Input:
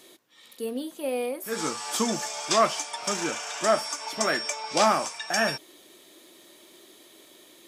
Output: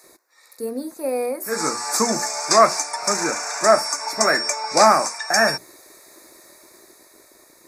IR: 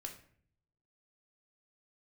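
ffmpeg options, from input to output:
-filter_complex "[0:a]bandreject=frequency=60:width_type=h:width=6,bandreject=frequency=120:width_type=h:width=6,bandreject=frequency=180:width_type=h:width=6,bandreject=frequency=240:width_type=h:width=6,bandreject=frequency=300:width_type=h:width=6,bandreject=frequency=360:width_type=h:width=6,acrossover=split=450[link_01][link_02];[link_01]aeval=exprs='val(0)*gte(abs(val(0)),0.00133)':channel_layout=same[link_03];[link_02]dynaudnorm=framelen=220:gausssize=11:maxgain=4.5dB[link_04];[link_03][link_04]amix=inputs=2:normalize=0,asuperstop=centerf=3100:order=4:qfactor=1.5,volume=4dB"

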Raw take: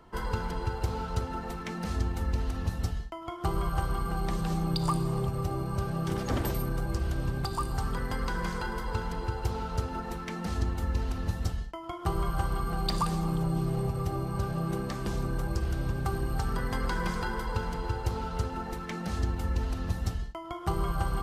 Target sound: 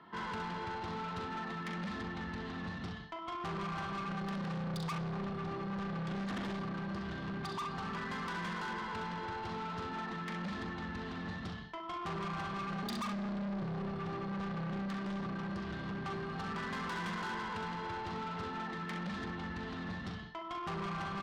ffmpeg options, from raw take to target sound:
ffmpeg -i in.wav -filter_complex "[0:a]highpass=170,equalizer=frequency=190:width_type=q:width=4:gain=10,equalizer=frequency=510:width_type=q:width=4:gain=-8,equalizer=frequency=1100:width_type=q:width=4:gain=6,equalizer=frequency=1800:width_type=q:width=4:gain=8,equalizer=frequency=3500:width_type=q:width=4:gain=6,lowpass=frequency=4400:width=0.5412,lowpass=frequency=4400:width=1.3066,asettb=1/sr,asplit=3[link_01][link_02][link_03];[link_01]atrim=end=12.834[link_04];[link_02]atrim=start=12.83:end=13.61,asetpts=PTS-STARTPTS,afade=type=in:duration=0.004:curve=qsin,afade=type=out:start_time=0.776:duration=0.004:curve=qsin,afreqshift=34[link_05];[link_03]atrim=start=13.606[link_06];[link_04][link_05]acrossfade=duration=0.004:curve1=hsin:curve2=qsin[link_07];[link_07][link_06]acrossfade=duration=0.004:curve1=qsin:curve2=hsin,aecho=1:1:41|66:0.376|0.376,asoftclip=type=tanh:threshold=-33.5dB,volume=-2.5dB" out.wav

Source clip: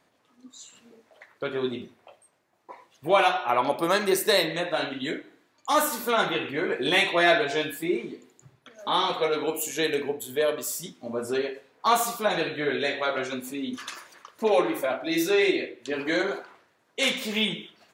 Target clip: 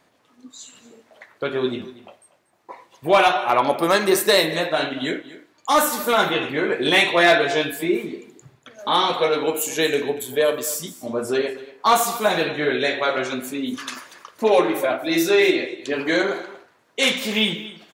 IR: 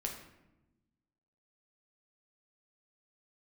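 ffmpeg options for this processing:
-af "aecho=1:1:237:0.133,volume=13dB,asoftclip=hard,volume=-13dB,volume=5.5dB"

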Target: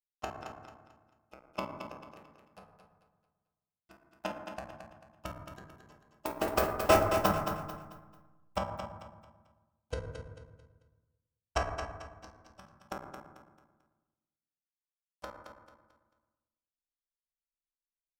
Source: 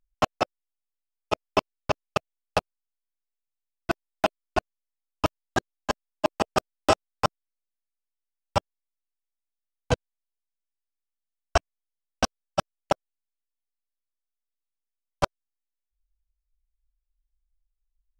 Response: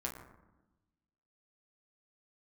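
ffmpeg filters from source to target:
-filter_complex "[0:a]asettb=1/sr,asplit=3[link_01][link_02][link_03];[link_01]atrim=end=6.264[link_04];[link_02]atrim=start=6.26:end=8.57,asetpts=PTS-STARTPTS,afade=type=in:duration=0.004:curve=qsin,afade=type=out:start_time=2.306:duration=0.004:curve=qsin,aeval=exprs='val(0)+0.5*0.112*sgn(val(0))':channel_layout=same[link_05];[link_03]atrim=start=8.566[link_06];[link_04][link_05]acrossfade=duration=0.004:curve1=hsin:curve2=qsin[link_07];[link_07][link_06]acrossfade=duration=0.004:curve1=qsin:curve2=hsin,acrossover=split=2800[link_08][link_09];[link_09]acompressor=threshold=-35dB:ratio=4:attack=1:release=60[link_10];[link_08][link_10]amix=inputs=2:normalize=0,agate=range=-31dB:threshold=-18dB:ratio=16:detection=peak,aemphasis=mode=production:type=75kf,aecho=1:1:221|442|663|884:0.422|0.143|0.0487|0.0166[link_11];[1:a]atrim=start_sample=2205[link_12];[link_11][link_12]afir=irnorm=-1:irlink=0,volume=-4.5dB"

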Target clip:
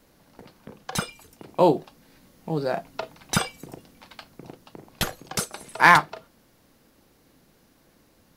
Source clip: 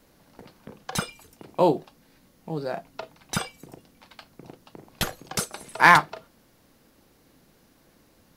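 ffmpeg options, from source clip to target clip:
ffmpeg -i in.wav -af "dynaudnorm=framelen=560:gausssize=7:maxgain=6.5dB" out.wav

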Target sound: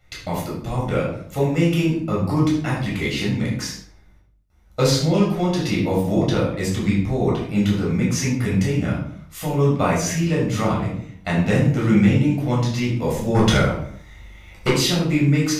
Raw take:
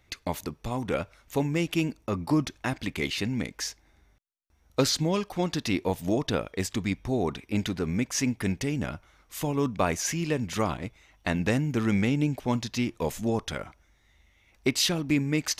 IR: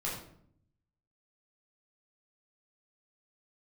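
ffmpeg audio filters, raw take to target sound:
-filter_complex "[0:a]asplit=3[link_01][link_02][link_03];[link_01]afade=type=out:start_time=13.34:duration=0.02[link_04];[link_02]aeval=exprs='0.224*sin(PI/2*2.24*val(0)/0.224)':channel_layout=same,afade=type=in:start_time=13.34:duration=0.02,afade=type=out:start_time=14.67:duration=0.02[link_05];[link_03]afade=type=in:start_time=14.67:duration=0.02[link_06];[link_04][link_05][link_06]amix=inputs=3:normalize=0[link_07];[1:a]atrim=start_sample=2205,afade=type=out:start_time=0.45:duration=0.01,atrim=end_sample=20286[link_08];[link_07][link_08]afir=irnorm=-1:irlink=0,volume=2dB"

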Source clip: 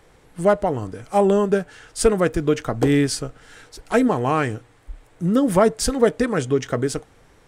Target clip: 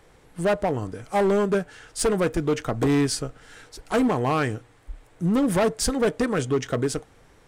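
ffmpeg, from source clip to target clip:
ffmpeg -i in.wav -af "asoftclip=type=hard:threshold=-15.5dB,volume=-1.5dB" out.wav

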